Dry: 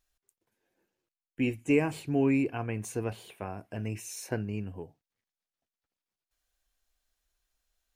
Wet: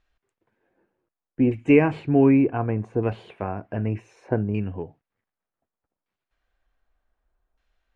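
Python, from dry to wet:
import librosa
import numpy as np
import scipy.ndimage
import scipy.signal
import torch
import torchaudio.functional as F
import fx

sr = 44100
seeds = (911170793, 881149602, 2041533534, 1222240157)

y = fx.filter_lfo_lowpass(x, sr, shape='saw_down', hz=0.66, low_hz=900.0, high_hz=2700.0, q=0.84)
y = fx.dynamic_eq(y, sr, hz=2300.0, q=0.76, threshold_db=-56.0, ratio=4.0, max_db=-3, at=(2.83, 3.48))
y = y * librosa.db_to_amplitude(9.0)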